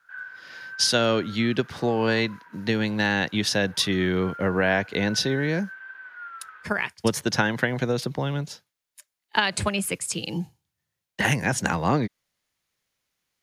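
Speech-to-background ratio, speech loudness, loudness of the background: 17.0 dB, -25.0 LUFS, -42.0 LUFS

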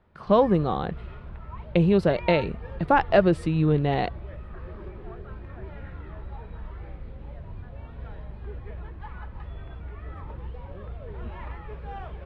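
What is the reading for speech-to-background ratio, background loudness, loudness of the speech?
17.0 dB, -40.0 LUFS, -23.0 LUFS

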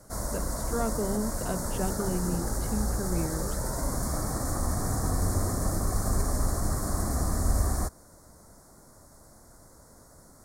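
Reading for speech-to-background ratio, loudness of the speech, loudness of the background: -4.0 dB, -34.5 LUFS, -30.5 LUFS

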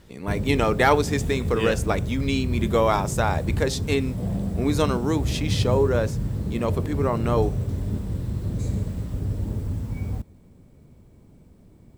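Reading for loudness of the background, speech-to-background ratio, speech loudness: -28.0 LUFS, 3.0 dB, -25.0 LUFS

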